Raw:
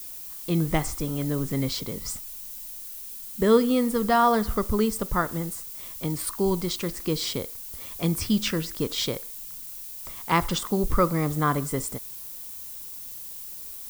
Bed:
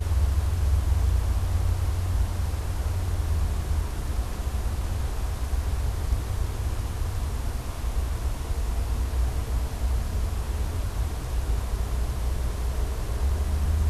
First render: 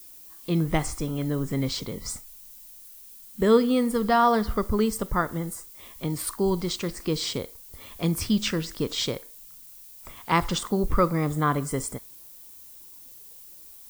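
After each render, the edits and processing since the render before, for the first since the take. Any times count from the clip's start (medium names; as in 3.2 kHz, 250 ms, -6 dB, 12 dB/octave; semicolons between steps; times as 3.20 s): noise print and reduce 8 dB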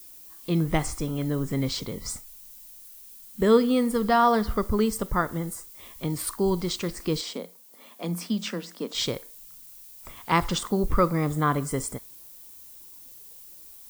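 7.21–8.95 s: rippled Chebyshev high-pass 170 Hz, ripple 6 dB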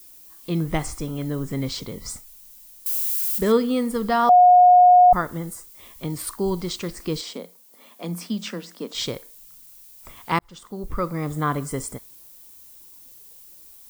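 2.86–3.52 s: zero-crossing glitches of -23 dBFS; 4.29–5.13 s: bleep 721 Hz -8.5 dBFS; 10.39–11.43 s: fade in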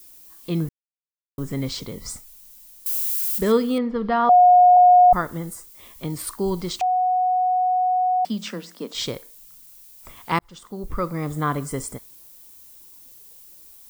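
0.69–1.38 s: mute; 3.78–4.77 s: Bessel low-pass 2.7 kHz, order 6; 6.81–8.25 s: bleep 735 Hz -17 dBFS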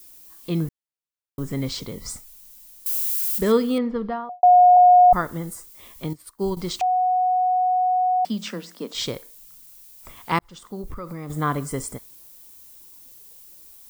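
3.84–4.43 s: studio fade out; 6.13–6.57 s: upward expansion 2.5:1, over -36 dBFS; 10.81–11.30 s: compression, threshold -29 dBFS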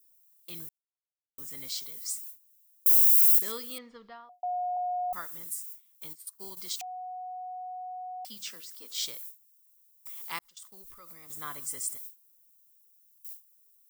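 gate with hold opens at -33 dBFS; pre-emphasis filter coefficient 0.97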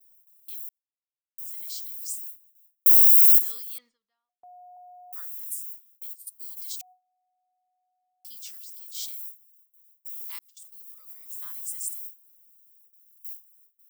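pre-emphasis filter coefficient 0.9; gate with hold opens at -47 dBFS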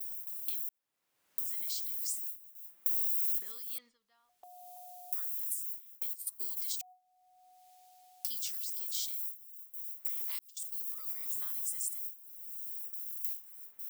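peak limiter -14 dBFS, peak gain reduction 4 dB; three bands compressed up and down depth 100%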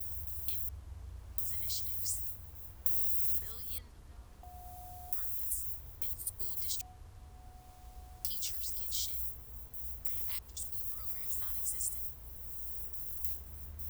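add bed -24.5 dB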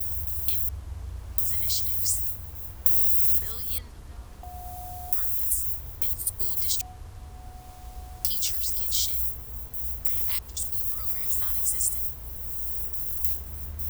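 trim +10.5 dB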